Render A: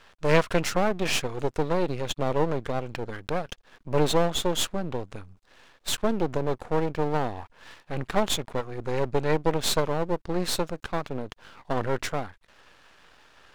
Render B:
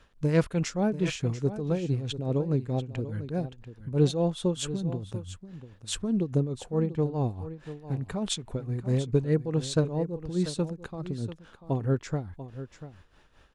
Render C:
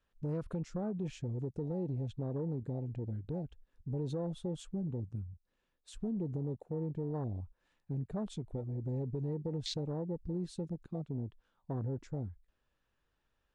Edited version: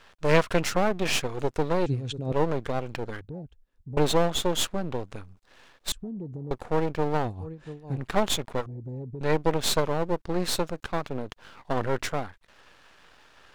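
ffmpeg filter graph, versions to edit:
-filter_complex "[1:a]asplit=2[a][b];[2:a]asplit=3[c][d][e];[0:a]asplit=6[f][g][h][i][j][k];[f]atrim=end=1.862[l];[a]atrim=start=1.858:end=2.322[m];[g]atrim=start=2.318:end=3.212[n];[c]atrim=start=3.208:end=3.972[o];[h]atrim=start=3.968:end=5.922[p];[d]atrim=start=5.918:end=6.512[q];[i]atrim=start=6.508:end=7.31[r];[b]atrim=start=7.21:end=8.06[s];[j]atrim=start=7.96:end=8.662[t];[e]atrim=start=8.658:end=9.212[u];[k]atrim=start=9.208[v];[l][m]acrossfade=d=0.004:c1=hsin:c2=hsin[w];[w][n]acrossfade=d=0.004:c1=hsin:c2=hsin[x];[x][o]acrossfade=d=0.004:c1=hsin:c2=hsin[y];[y][p]acrossfade=d=0.004:c1=hsin:c2=hsin[z];[z][q]acrossfade=d=0.004:c1=hsin:c2=hsin[aa];[aa][r]acrossfade=d=0.004:c1=hsin:c2=hsin[ab];[ab][s]acrossfade=d=0.1:c1=tri:c2=tri[ac];[ac][t]acrossfade=d=0.1:c1=tri:c2=tri[ad];[ad][u]acrossfade=d=0.004:c1=hsin:c2=hsin[ae];[ae][v]acrossfade=d=0.004:c1=hsin:c2=hsin"

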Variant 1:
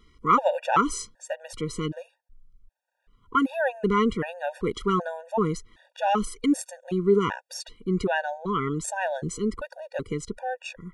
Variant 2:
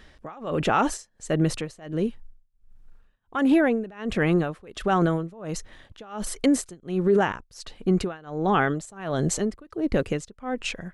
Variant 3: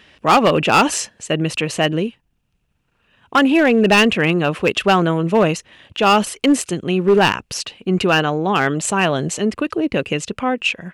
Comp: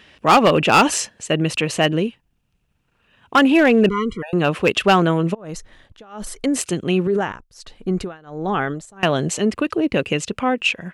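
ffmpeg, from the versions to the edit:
-filter_complex "[1:a]asplit=2[a][b];[2:a]asplit=4[c][d][e][f];[c]atrim=end=3.892[g];[0:a]atrim=start=3.888:end=4.332[h];[d]atrim=start=4.328:end=5.35[i];[a]atrim=start=5.33:end=6.57[j];[e]atrim=start=6.55:end=7.072[k];[b]atrim=start=7.068:end=9.032[l];[f]atrim=start=9.028[m];[g][h]acrossfade=d=0.004:c1=hsin:c2=hsin[n];[n][i]acrossfade=d=0.004:c1=hsin:c2=hsin[o];[o][j]acrossfade=d=0.02:c1=tri:c2=tri[p];[p][k]acrossfade=d=0.02:c1=tri:c2=tri[q];[q][l]acrossfade=d=0.004:c1=hsin:c2=hsin[r];[r][m]acrossfade=d=0.004:c1=hsin:c2=hsin"

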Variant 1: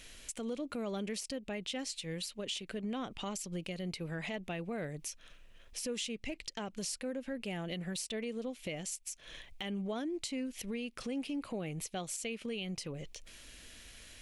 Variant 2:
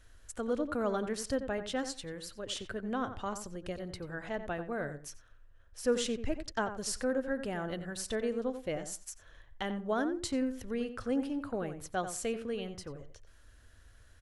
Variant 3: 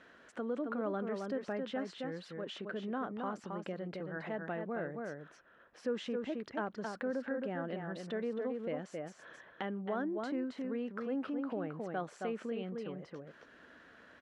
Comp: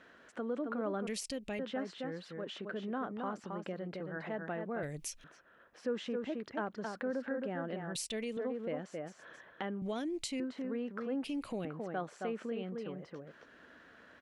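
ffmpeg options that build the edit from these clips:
-filter_complex "[0:a]asplit=5[a][b][c][d][e];[2:a]asplit=6[f][g][h][i][j][k];[f]atrim=end=1.072[l];[a]atrim=start=1.068:end=1.592[m];[g]atrim=start=1.588:end=4.832[n];[b]atrim=start=4.828:end=5.242[o];[h]atrim=start=5.238:end=7.952[p];[c]atrim=start=7.948:end=8.372[q];[i]atrim=start=8.368:end=9.822[r];[d]atrim=start=9.818:end=10.402[s];[j]atrim=start=10.398:end=11.242[t];[e]atrim=start=11.238:end=11.652[u];[k]atrim=start=11.648[v];[l][m]acrossfade=d=0.004:c1=hsin:c2=hsin[w];[w][n]acrossfade=d=0.004:c1=hsin:c2=hsin[x];[x][o]acrossfade=d=0.004:c1=hsin:c2=hsin[y];[y][p]acrossfade=d=0.004:c1=hsin:c2=hsin[z];[z][q]acrossfade=d=0.004:c1=hsin:c2=hsin[aa];[aa][r]acrossfade=d=0.004:c1=hsin:c2=hsin[ab];[ab][s]acrossfade=d=0.004:c1=hsin:c2=hsin[ac];[ac][t]acrossfade=d=0.004:c1=hsin:c2=hsin[ad];[ad][u]acrossfade=d=0.004:c1=hsin:c2=hsin[ae];[ae][v]acrossfade=d=0.004:c1=hsin:c2=hsin"

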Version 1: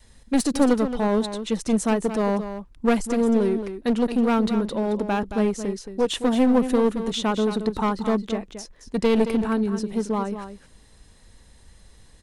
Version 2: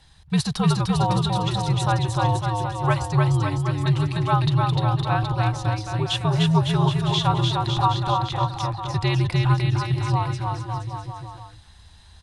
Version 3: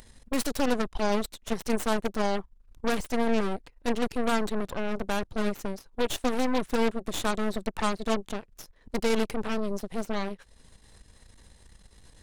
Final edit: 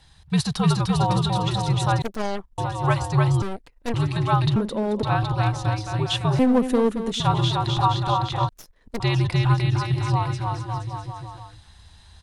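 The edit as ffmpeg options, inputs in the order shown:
-filter_complex "[2:a]asplit=3[a][b][c];[0:a]asplit=2[d][e];[1:a]asplit=6[f][g][h][i][j][k];[f]atrim=end=2.022[l];[a]atrim=start=2.018:end=2.582[m];[g]atrim=start=2.578:end=3.422[n];[b]atrim=start=3.418:end=3.942[o];[h]atrim=start=3.938:end=4.562[p];[d]atrim=start=4.558:end=5.032[q];[i]atrim=start=5.028:end=6.392[r];[e]atrim=start=6.388:end=7.202[s];[j]atrim=start=7.198:end=8.492[t];[c]atrim=start=8.488:end=9.002[u];[k]atrim=start=8.998[v];[l][m]acrossfade=d=0.004:c1=hsin:c2=hsin[w];[w][n]acrossfade=d=0.004:c1=hsin:c2=hsin[x];[x][o]acrossfade=d=0.004:c1=hsin:c2=hsin[y];[y][p]acrossfade=d=0.004:c1=hsin:c2=hsin[z];[z][q]acrossfade=d=0.004:c1=hsin:c2=hsin[aa];[aa][r]acrossfade=d=0.004:c1=hsin:c2=hsin[ab];[ab][s]acrossfade=d=0.004:c1=hsin:c2=hsin[ac];[ac][t]acrossfade=d=0.004:c1=hsin:c2=hsin[ad];[ad][u]acrossfade=d=0.004:c1=hsin:c2=hsin[ae];[ae][v]acrossfade=d=0.004:c1=hsin:c2=hsin"

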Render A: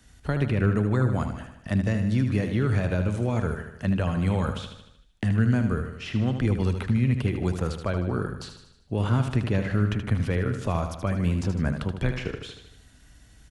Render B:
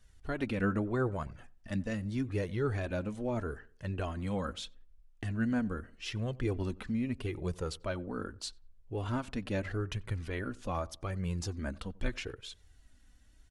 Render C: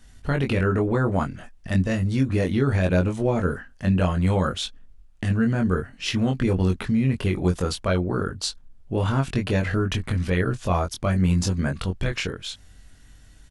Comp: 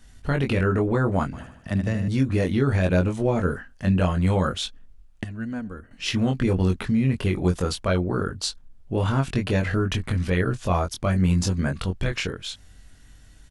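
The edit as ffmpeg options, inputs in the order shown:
-filter_complex "[2:a]asplit=3[a][b][c];[a]atrim=end=1.332[d];[0:a]atrim=start=1.328:end=2.082[e];[b]atrim=start=2.078:end=5.242[f];[1:a]atrim=start=5.238:end=5.912[g];[c]atrim=start=5.908[h];[d][e]acrossfade=d=0.004:c1=hsin:c2=hsin[i];[i][f]acrossfade=d=0.004:c1=hsin:c2=hsin[j];[j][g]acrossfade=d=0.004:c1=hsin:c2=hsin[k];[k][h]acrossfade=d=0.004:c1=hsin:c2=hsin"

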